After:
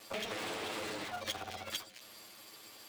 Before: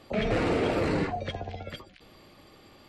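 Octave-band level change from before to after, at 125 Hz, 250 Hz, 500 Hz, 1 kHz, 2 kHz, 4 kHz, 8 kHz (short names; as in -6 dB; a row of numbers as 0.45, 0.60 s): -21.5, -17.5, -14.0, -8.5, -6.5, +0.5, +6.5 dB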